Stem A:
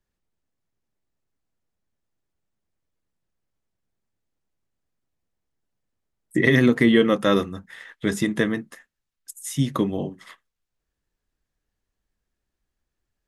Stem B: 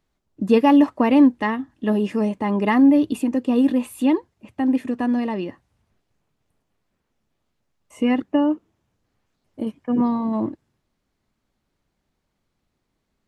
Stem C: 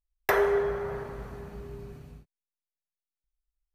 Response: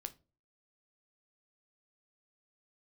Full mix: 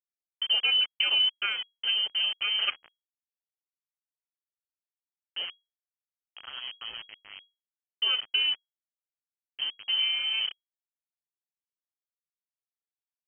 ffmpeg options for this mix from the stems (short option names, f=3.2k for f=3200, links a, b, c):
-filter_complex "[0:a]equalizer=f=1k:w=0.35:g=-13,volume=-16dB[a];[1:a]acompressor=threshold=-17dB:ratio=3,tremolo=f=29:d=0.261,volume=-5dB,asplit=3[b][c][d];[b]atrim=end=2.7,asetpts=PTS-STARTPTS,afade=t=out:st=2.696:d=0.004:c=hsin[e];[c]atrim=start=2.7:end=5.36,asetpts=PTS-STARTPTS,volume=0[f];[d]atrim=start=5.36,asetpts=PTS-STARTPTS,afade=t=in:d=0.004:c=hsin[g];[e][f][g]concat=n=3:v=0:a=1[h];[2:a]adelay=2300,volume=-16.5dB[i];[a][h][i]amix=inputs=3:normalize=0,aeval=exprs='val(0)*gte(abs(val(0)),0.0188)':c=same,lowpass=f=2.8k:t=q:w=0.5098,lowpass=f=2.8k:t=q:w=0.6013,lowpass=f=2.8k:t=q:w=0.9,lowpass=f=2.8k:t=q:w=2.563,afreqshift=-3300"